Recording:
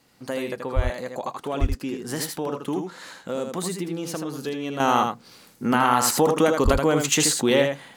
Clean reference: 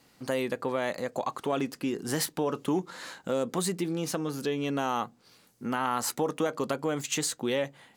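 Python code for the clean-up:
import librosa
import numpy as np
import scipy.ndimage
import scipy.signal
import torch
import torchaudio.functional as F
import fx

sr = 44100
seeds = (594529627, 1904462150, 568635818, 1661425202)

y = fx.fix_deplosive(x, sr, at_s=(0.75, 1.6, 6.64))
y = fx.fix_echo_inverse(y, sr, delay_ms=80, level_db=-5.5)
y = fx.fix_level(y, sr, at_s=4.8, step_db=-9.0)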